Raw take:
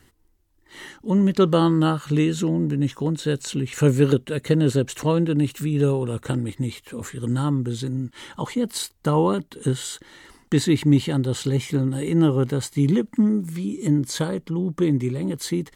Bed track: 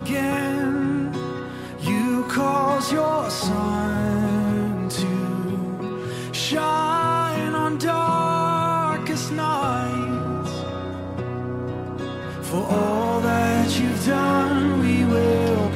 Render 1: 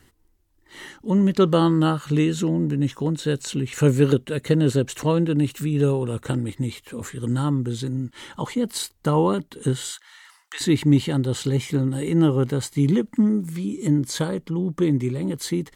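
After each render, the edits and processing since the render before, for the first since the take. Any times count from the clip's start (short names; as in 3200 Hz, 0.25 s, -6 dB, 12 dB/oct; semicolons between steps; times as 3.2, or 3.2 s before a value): 9.91–10.61 HPF 950 Hz 24 dB/oct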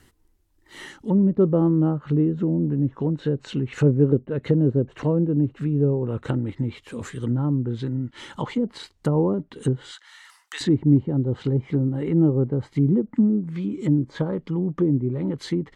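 treble ducked by the level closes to 560 Hz, closed at -18 dBFS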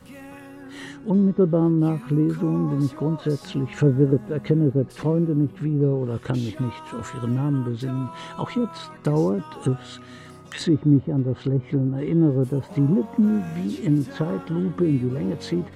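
add bed track -18.5 dB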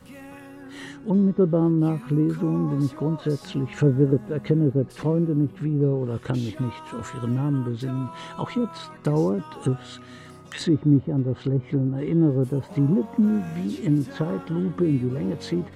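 gain -1 dB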